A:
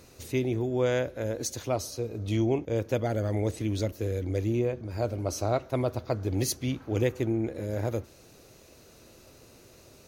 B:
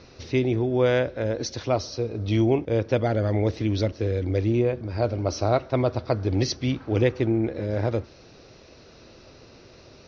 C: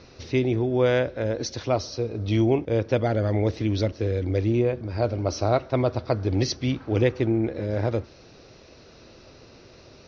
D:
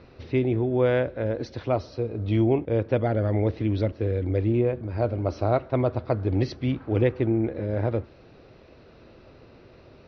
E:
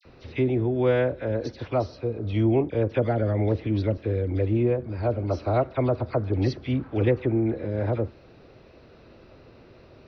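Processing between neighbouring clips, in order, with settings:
Chebyshev low-pass filter 5,700 Hz, order 6; level +6 dB
no processing that can be heard
high-frequency loss of the air 310 metres
all-pass dispersion lows, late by 54 ms, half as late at 1,800 Hz

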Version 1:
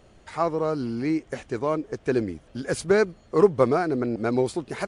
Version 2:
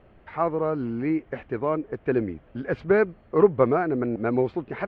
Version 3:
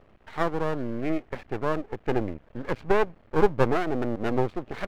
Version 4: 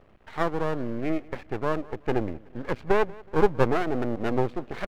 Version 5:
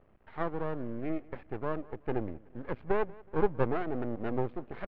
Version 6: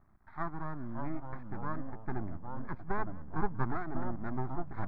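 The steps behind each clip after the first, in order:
low-pass filter 2,600 Hz 24 dB per octave
half-wave rectification; level +1.5 dB
repeating echo 185 ms, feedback 37%, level −22.5 dB
high-frequency loss of the air 390 metres; level −6 dB
phaser with its sweep stopped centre 1,200 Hz, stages 4; delay with pitch and tempo change per echo 503 ms, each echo −3 semitones, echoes 3, each echo −6 dB

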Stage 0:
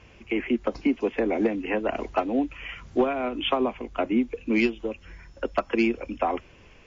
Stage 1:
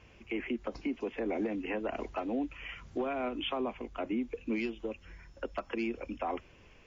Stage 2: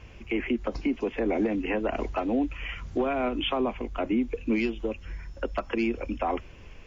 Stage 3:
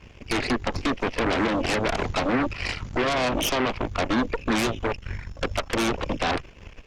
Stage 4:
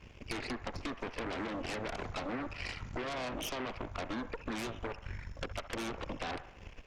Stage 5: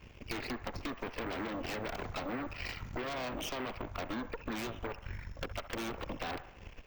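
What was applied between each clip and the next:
brickwall limiter −19.5 dBFS, peak gain reduction 7.5 dB; level −6 dB
low-shelf EQ 86 Hz +10.5 dB; level +6.5 dB
harmonic generator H 8 −7 dB, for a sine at −16.5 dBFS
downward compressor 4 to 1, threshold −30 dBFS, peak gain reduction 9.5 dB; delay with a band-pass on its return 67 ms, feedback 57%, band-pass 1,100 Hz, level −11.5 dB; level −6.5 dB
bad sample-rate conversion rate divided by 2×, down filtered, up hold

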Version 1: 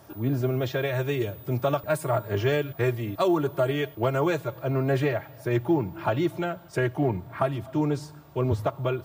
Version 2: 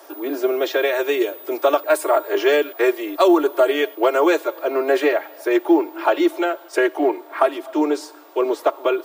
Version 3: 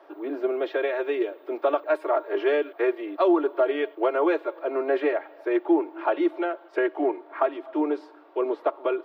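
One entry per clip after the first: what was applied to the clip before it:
Butterworth high-pass 300 Hz 72 dB per octave; level +9 dB
high-frequency loss of the air 390 metres; level −5 dB

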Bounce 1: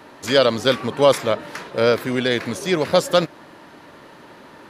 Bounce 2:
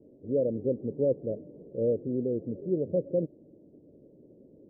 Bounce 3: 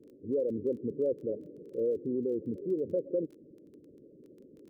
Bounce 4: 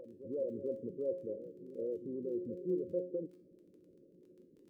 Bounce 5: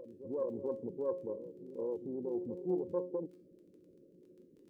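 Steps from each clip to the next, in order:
Butterworth low-pass 530 Hz 48 dB per octave; level −7.5 dB
spectral envelope exaggerated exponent 2; downward compressor 2 to 1, threshold −29 dBFS, peak gain reduction 5 dB; surface crackle 16 per second −49 dBFS
pitch vibrato 0.59 Hz 49 cents; tuned comb filter 180 Hz, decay 0.5 s, harmonics all, mix 80%; backwards echo 446 ms −12.5 dB; level +3.5 dB
phase distortion by the signal itself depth 0.12 ms; level +1 dB

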